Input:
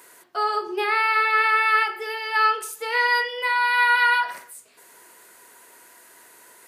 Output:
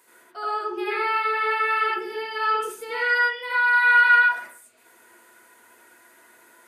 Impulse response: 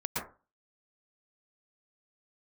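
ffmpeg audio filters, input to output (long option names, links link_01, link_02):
-filter_complex "[0:a]asplit=3[link_01][link_02][link_03];[link_01]afade=type=out:start_time=0.85:duration=0.02[link_04];[link_02]lowshelf=frequency=480:width_type=q:width=1.5:gain=9.5,afade=type=in:start_time=0.85:duration=0.02,afade=type=out:start_time=2.93:duration=0.02[link_05];[link_03]afade=type=in:start_time=2.93:duration=0.02[link_06];[link_04][link_05][link_06]amix=inputs=3:normalize=0[link_07];[1:a]atrim=start_sample=2205,asetrate=66150,aresample=44100[link_08];[link_07][link_08]afir=irnorm=-1:irlink=0,volume=-5dB"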